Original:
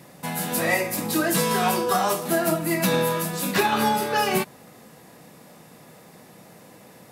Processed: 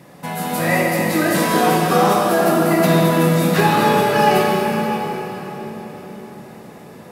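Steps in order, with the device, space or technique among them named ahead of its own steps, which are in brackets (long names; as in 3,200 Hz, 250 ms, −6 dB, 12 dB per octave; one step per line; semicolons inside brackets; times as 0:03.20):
swimming-pool hall (convolution reverb RT60 4.8 s, pre-delay 32 ms, DRR −2.5 dB; high-shelf EQ 3,700 Hz −7.5 dB)
level +3.5 dB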